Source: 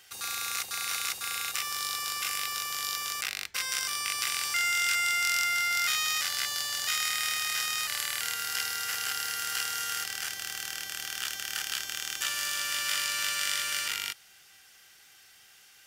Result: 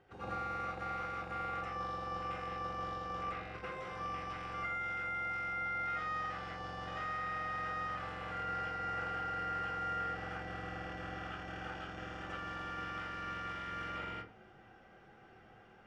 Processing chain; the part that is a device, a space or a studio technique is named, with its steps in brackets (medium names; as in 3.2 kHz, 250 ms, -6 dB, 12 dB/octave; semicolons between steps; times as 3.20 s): television next door (compression, threshold -33 dBFS, peak gain reduction 9.5 dB; low-pass 570 Hz 12 dB/octave; reverberation RT60 0.35 s, pre-delay 82 ms, DRR -8.5 dB); trim +7 dB